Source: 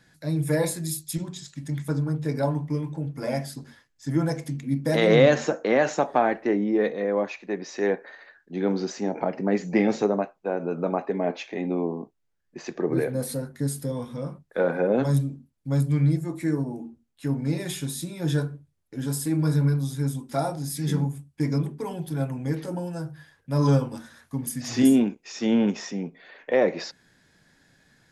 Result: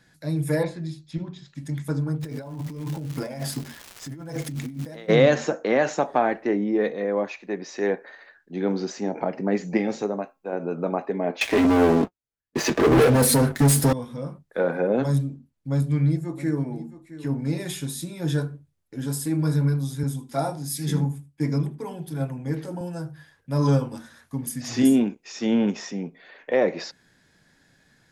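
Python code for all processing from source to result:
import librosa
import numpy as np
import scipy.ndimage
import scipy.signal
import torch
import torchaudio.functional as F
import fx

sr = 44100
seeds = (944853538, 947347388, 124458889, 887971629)

y = fx.chain(x, sr, fx.air_absorb(metres=240.0),
    fx.resample_bad(factor=2, down='none', up='filtered'), at=(0.63, 1.55))
y = fx.dmg_crackle(y, sr, seeds[0], per_s=480.0, level_db=-37.0, at=(2.2, 5.08), fade=0.02)
y = fx.over_compress(y, sr, threshold_db=-34.0, ratio=-1.0, at=(2.2, 5.08), fade=0.02)
y = fx.chain(y, sr, fx.high_shelf(hz=9300.0, db=11.0),
    fx.comb_fb(f0_hz=270.0, decay_s=0.26, harmonics='all', damping=0.0, mix_pct=40), at=(9.77, 10.53))
y = fx.chain(y, sr, fx.leveller(passes=5),
    fx.notch_comb(f0_hz=180.0), at=(11.41, 13.93))
y = fx.chain(y, sr, fx.high_shelf(hz=8400.0, db=-7.0),
    fx.echo_single(ms=666, db=-15.0), at=(15.16, 17.4))
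y = fx.chain(y, sr, fx.echo_single(ms=78, db=-17.5),
    fx.band_widen(depth_pct=40), at=(20.03, 22.81))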